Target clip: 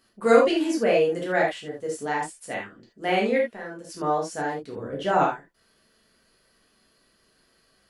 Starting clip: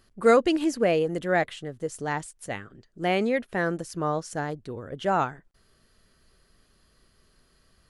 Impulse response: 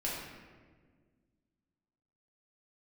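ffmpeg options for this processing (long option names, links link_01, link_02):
-filter_complex "[0:a]highpass=frequency=290:poles=1,asplit=3[link_01][link_02][link_03];[link_01]afade=type=out:start_time=3.4:duration=0.02[link_04];[link_02]acompressor=threshold=-42dB:ratio=2.5,afade=type=in:start_time=3.4:duration=0.02,afade=type=out:start_time=3.88:duration=0.02[link_05];[link_03]afade=type=in:start_time=3.88:duration=0.02[link_06];[link_04][link_05][link_06]amix=inputs=3:normalize=0,asettb=1/sr,asplit=3[link_07][link_08][link_09];[link_07]atrim=end=4.754[link_10];[link_08]atrim=start=4.75:end=5.23,asetpts=PTS-STARTPTS,afade=type=in:duration=0.004:curve=qsin,afade=type=out:start_time=0.476:duration=0.004:curve=qsin,lowshelf=frequency=420:gain=7[link_11];[link_09]atrim=start=5.226[link_12];[link_10][link_11]acrossfade=duration=0.004:curve1=hsin:curve2=qsin[link_13];[link_13][link_12]acrossfade=duration=0.004:curve1=qsin:curve2=hsin[link_14];[1:a]atrim=start_sample=2205,atrim=end_sample=3969[link_15];[link_14][link_15]afir=irnorm=-1:irlink=0"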